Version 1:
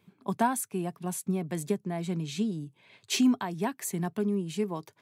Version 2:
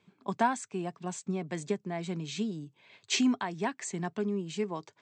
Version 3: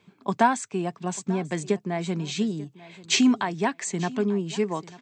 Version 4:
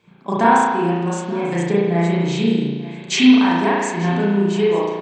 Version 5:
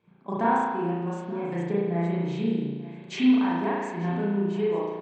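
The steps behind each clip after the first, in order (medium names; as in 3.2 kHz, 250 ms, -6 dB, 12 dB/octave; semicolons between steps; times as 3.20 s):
dynamic bell 2 kHz, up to +4 dB, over -48 dBFS, Q 2.4; steep low-pass 8 kHz 72 dB/octave; bass shelf 230 Hz -7 dB
feedback delay 891 ms, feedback 17%, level -19.5 dB; trim +7 dB
doubling 33 ms -12 dB; reverberation RT60 1.3 s, pre-delay 35 ms, DRR -8 dB
low-pass 1.5 kHz 6 dB/octave; trim -8.5 dB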